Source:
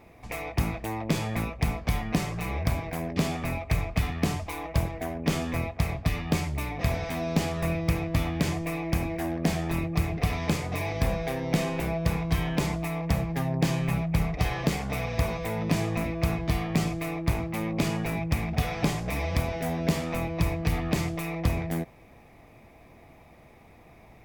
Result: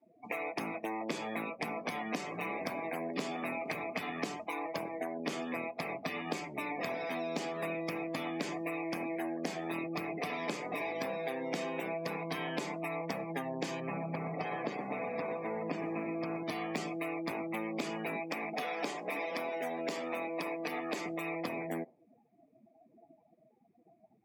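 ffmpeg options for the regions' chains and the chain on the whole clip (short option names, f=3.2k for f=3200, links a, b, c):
-filter_complex "[0:a]asettb=1/sr,asplit=3[a][b][c];[a]atrim=end=1.774[d];[b]atrim=start=1.77:end=4.28,asetpts=PTS-STARTPTS,afade=t=in:d=0.004:c=qsin,afade=t=out:st=2.506:d=0.004:c=qsin,acompressor=mode=upward:threshold=-27dB:ratio=2.5:attack=3.2:release=140:knee=2.83:detection=peak,aecho=1:1:465:0.126,atrim=end_sample=110691[e];[c]atrim=start=4.276[f];[d][e]acrossfade=d=0.004:c1=hsin:c2=qsin[g];[g][f]acrossfade=d=0.004:c1=qsin:c2=hsin,asettb=1/sr,asplit=3[h][i][j];[h]atrim=end=13.804[k];[i]atrim=start=13.8:end=16.43,asetpts=PTS-STARTPTS,afade=t=in:d=0.004:c=qsin,afade=t=out:st=2.626:d=0.004:c=qsin,aecho=1:1:121|242|363|484|605|726|847:0.398|0.219|0.12|0.0662|0.0364|0.02|0.011,atrim=end_sample=115983,adynamicequalizer=threshold=0.00398:dfrequency=1900:dqfactor=0.7:tfrequency=1900:tqfactor=0.7:attack=5:release=100:ratio=0.375:range=4:mode=cutabove:tftype=highshelf[l];[j]atrim=start=16.426[m];[k][l]acrossfade=d=0.004:c1=hsin:c2=qsin[n];[n][m]acrossfade=d=0.004:c1=qsin:c2=hsin,asettb=1/sr,asplit=3[o][p][q];[o]atrim=end=18.164[r];[p]atrim=start=18.16:end=21.06,asetpts=PTS-STARTPTS,afade=t=in:d=0.004:c=qsin,afade=t=out:st=2.896:d=0.004:c=qsin,acrusher=bits=8:mix=0:aa=0.5,highpass=260[s];[q]atrim=start=21.056[t];[r][s]acrossfade=d=0.004:c1=hsin:c2=qsin[u];[u][t]acrossfade=d=0.004:c1=qsin:c2=hsin,afftdn=nr=35:nf=-42,highpass=f=240:w=0.5412,highpass=f=240:w=1.3066,acrossover=split=3000|7800[v][w][x];[v]acompressor=threshold=-39dB:ratio=4[y];[w]acompressor=threshold=-53dB:ratio=4[z];[x]acompressor=threshold=-60dB:ratio=4[aa];[y][z][aa]amix=inputs=3:normalize=0,volume=3.5dB"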